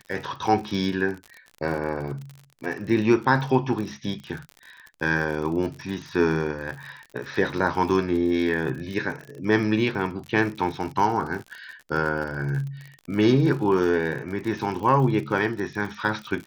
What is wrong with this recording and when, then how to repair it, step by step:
surface crackle 52 per second −32 dBFS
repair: click removal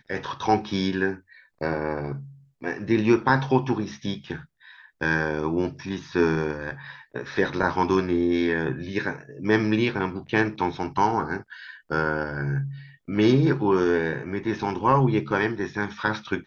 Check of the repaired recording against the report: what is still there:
none of them is left

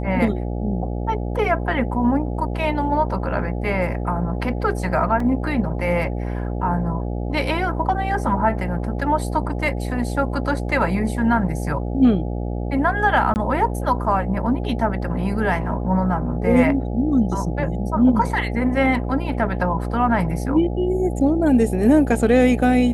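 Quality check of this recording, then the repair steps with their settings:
mains buzz 60 Hz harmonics 14 −25 dBFS
0:05.20: drop-out 3.2 ms
0:13.34–0:13.36: drop-out 19 ms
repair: hum removal 60 Hz, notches 14
repair the gap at 0:05.20, 3.2 ms
repair the gap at 0:13.34, 19 ms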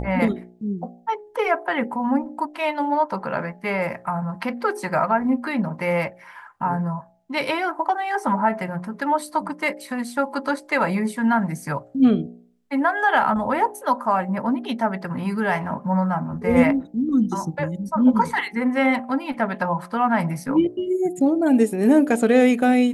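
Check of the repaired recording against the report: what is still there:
none of them is left

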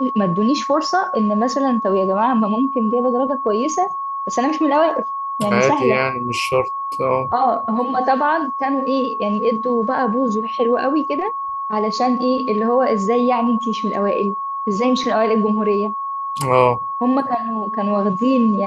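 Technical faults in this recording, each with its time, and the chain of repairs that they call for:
whistle 1,100 Hz −22 dBFS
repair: notch filter 1,100 Hz, Q 30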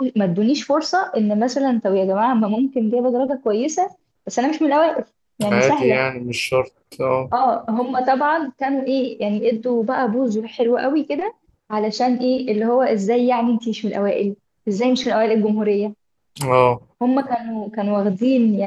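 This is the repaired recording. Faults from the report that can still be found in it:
none of them is left

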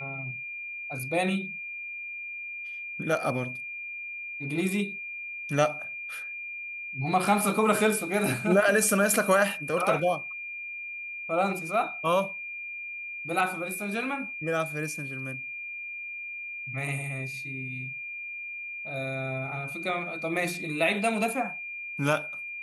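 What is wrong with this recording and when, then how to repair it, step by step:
whistle 2,400 Hz −35 dBFS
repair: notch filter 2,400 Hz, Q 30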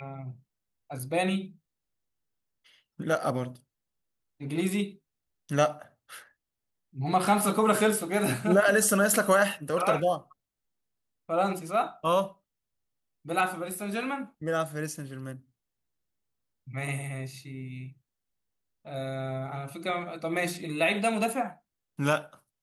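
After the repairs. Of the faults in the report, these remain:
none of them is left

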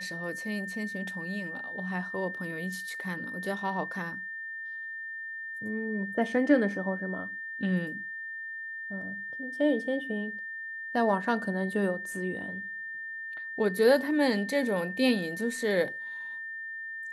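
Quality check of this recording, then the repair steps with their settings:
whistle 1,800 Hz −36 dBFS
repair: notch filter 1,800 Hz, Q 30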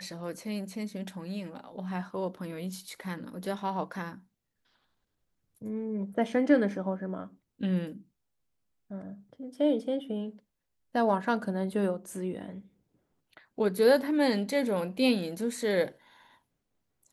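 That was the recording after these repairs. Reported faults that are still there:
none of them is left

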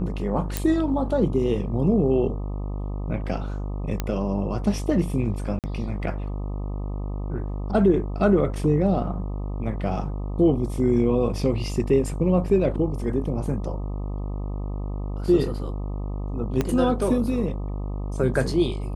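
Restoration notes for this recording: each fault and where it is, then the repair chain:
mains buzz 50 Hz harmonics 25 −29 dBFS
0:00.57: click −8 dBFS
0:04.00: click −11 dBFS
0:05.59–0:05.64: drop-out 48 ms
0:16.61: click −10 dBFS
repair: click removal
hum removal 50 Hz, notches 25
repair the gap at 0:05.59, 48 ms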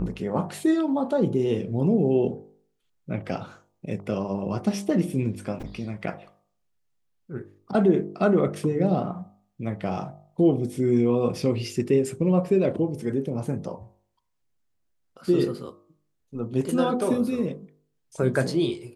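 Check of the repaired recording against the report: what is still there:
0:16.61: click

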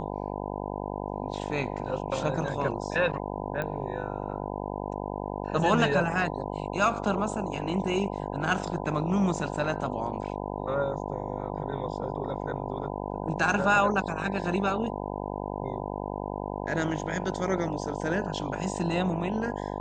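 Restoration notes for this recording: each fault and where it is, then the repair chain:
mains buzz 50 Hz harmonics 20 −34 dBFS
0:03.62: click −19 dBFS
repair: click removal
hum removal 50 Hz, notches 20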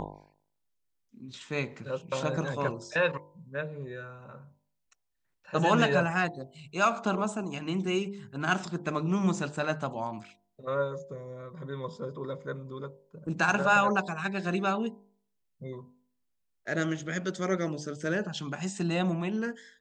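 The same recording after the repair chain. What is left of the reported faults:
none of them is left

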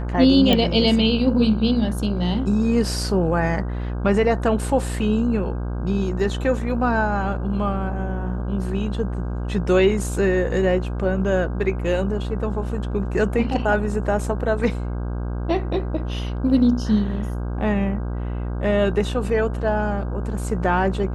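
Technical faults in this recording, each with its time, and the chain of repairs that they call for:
mains buzz 60 Hz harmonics 27 −26 dBFS
0:00.53: click −6 dBFS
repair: click removal
hum removal 60 Hz, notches 27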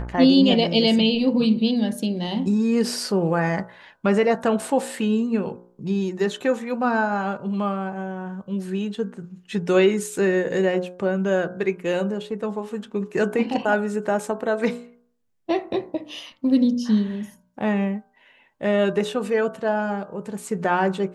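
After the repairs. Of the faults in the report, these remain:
none of them is left

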